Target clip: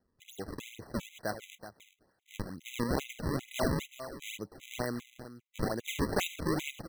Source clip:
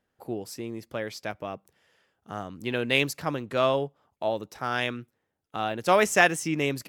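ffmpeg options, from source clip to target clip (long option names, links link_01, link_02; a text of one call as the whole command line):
ffmpeg -i in.wav -filter_complex "[0:a]asettb=1/sr,asplit=3[link_01][link_02][link_03];[link_01]atrim=end=4.494[link_04];[link_02]atrim=start=4.49:end=4.95,asetpts=PTS-STARTPTS,afade=type=in:duration=0.004:curve=qsin,afade=type=out:start_time=0.456:duration=0.004:curve=qsin,lowpass=frequency=1900:poles=1[link_05];[link_03]atrim=start=4.946[link_06];[link_04][link_05]acrossfade=duration=0.004:curve1=hsin:curve2=qsin[link_07];[link_07][link_06]acrossfade=duration=0.004:curve1=qsin:curve2=hsin,acompressor=threshold=-26dB:ratio=2.5,asoftclip=type=tanh:threshold=-16.5dB,asplit=2[link_08][link_09];[link_09]aecho=0:1:377:0.237[link_10];[link_08][link_10]amix=inputs=2:normalize=0,acrusher=samples=35:mix=1:aa=0.000001:lfo=1:lforange=56:lforate=2.2,afftfilt=real='re*gt(sin(2*PI*2.5*pts/sr)*(1-2*mod(floor(b*sr/1024/2000),2)),0)':imag='im*gt(sin(2*PI*2.5*pts/sr)*(1-2*mod(floor(b*sr/1024/2000),2)),0)':win_size=1024:overlap=0.75" out.wav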